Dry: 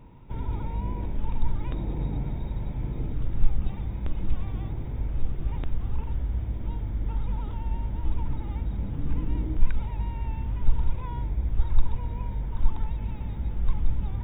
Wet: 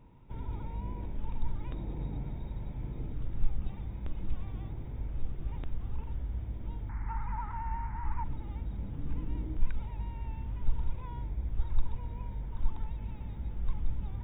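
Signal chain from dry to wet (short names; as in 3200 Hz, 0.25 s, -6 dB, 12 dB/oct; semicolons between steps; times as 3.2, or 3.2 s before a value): 6.89–8.24 EQ curve 170 Hz 0 dB, 600 Hz -9 dB, 880 Hz +14 dB, 2000 Hz +13 dB, 3300 Hz -11 dB; gain -7.5 dB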